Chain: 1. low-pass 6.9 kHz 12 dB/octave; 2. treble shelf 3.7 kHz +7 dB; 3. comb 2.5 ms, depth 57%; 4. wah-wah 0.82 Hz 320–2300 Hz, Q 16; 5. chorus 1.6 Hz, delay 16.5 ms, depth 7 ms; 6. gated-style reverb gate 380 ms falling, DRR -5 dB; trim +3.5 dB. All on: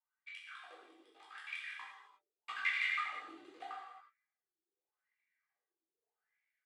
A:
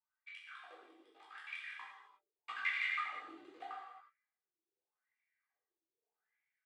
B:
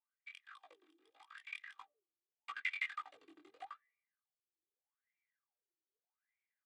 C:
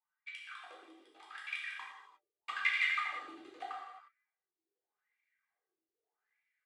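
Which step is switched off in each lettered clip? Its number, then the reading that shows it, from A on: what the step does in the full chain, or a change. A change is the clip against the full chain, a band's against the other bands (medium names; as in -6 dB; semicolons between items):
2, 4 kHz band -2.5 dB; 6, loudness change -6.0 LU; 5, loudness change +3.0 LU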